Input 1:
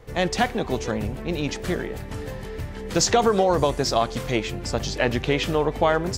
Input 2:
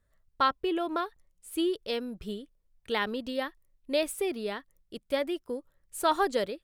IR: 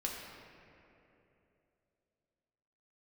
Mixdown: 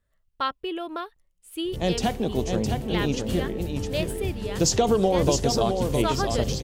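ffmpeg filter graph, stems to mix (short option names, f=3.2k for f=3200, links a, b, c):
-filter_complex "[0:a]equalizer=f=1.8k:t=o:w=2.4:g=-14,adelay=1650,volume=2dB,asplit=2[a][b];[b]volume=-5.5dB[c];[1:a]volume=-2dB[d];[c]aecho=0:1:661:1[e];[a][d][e]amix=inputs=3:normalize=0,equalizer=f=2.9k:t=o:w=0.44:g=5.5"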